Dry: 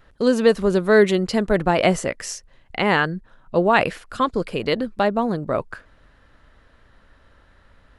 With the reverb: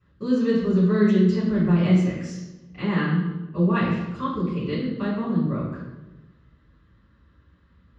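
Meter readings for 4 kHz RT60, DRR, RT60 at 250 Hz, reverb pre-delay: 0.80 s, -9.5 dB, 1.4 s, 3 ms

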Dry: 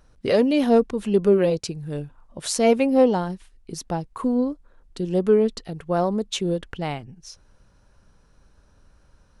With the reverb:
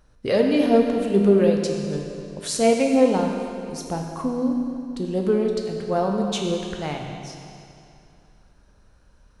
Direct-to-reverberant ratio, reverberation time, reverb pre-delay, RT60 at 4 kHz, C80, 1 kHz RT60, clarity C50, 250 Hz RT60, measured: 1.0 dB, 2.6 s, 10 ms, 2.4 s, 3.5 dB, 2.6 s, 2.5 dB, 2.6 s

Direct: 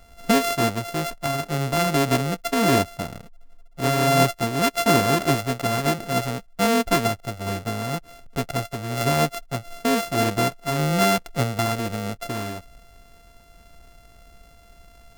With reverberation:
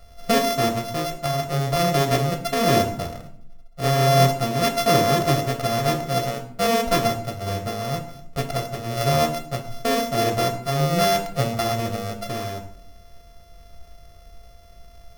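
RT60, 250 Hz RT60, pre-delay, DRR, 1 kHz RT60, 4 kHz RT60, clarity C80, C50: 0.65 s, 0.90 s, 4 ms, 4.5 dB, 0.55 s, 0.45 s, 14.0 dB, 11.0 dB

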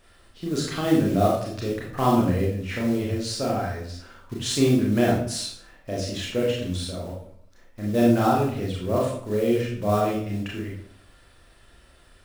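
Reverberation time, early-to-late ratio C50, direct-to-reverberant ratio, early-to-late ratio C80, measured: 0.60 s, 3.0 dB, -3.5 dB, 7.0 dB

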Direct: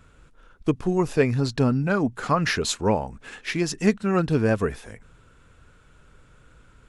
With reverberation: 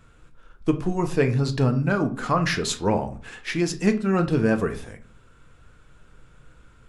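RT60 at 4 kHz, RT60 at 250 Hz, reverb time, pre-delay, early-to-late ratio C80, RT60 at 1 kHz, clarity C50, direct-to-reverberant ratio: 0.30 s, 0.55 s, 0.45 s, 6 ms, 19.0 dB, 0.40 s, 14.0 dB, 7.0 dB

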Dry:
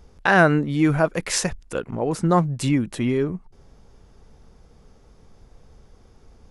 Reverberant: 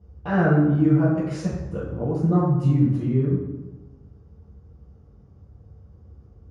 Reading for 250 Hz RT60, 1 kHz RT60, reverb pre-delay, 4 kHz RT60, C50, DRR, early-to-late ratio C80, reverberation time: 1.3 s, 1.0 s, 3 ms, 0.75 s, 1.5 dB, -7.5 dB, 4.0 dB, 1.1 s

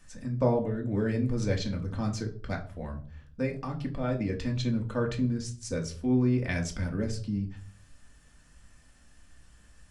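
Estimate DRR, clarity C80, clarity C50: 1.0 dB, 17.5 dB, 12.5 dB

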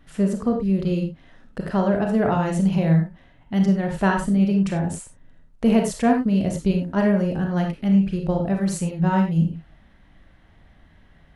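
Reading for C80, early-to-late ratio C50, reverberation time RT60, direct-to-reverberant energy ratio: 10.5 dB, 5.5 dB, no single decay rate, 2.0 dB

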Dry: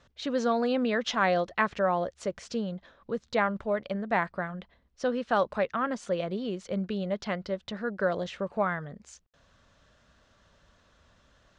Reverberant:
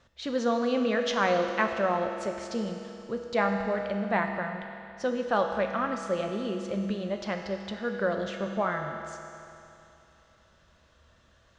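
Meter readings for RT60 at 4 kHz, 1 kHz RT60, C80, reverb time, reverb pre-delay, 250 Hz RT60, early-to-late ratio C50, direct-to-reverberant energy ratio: 2.7 s, 2.8 s, 5.5 dB, 2.8 s, 6 ms, 2.8 s, 4.5 dB, 3.0 dB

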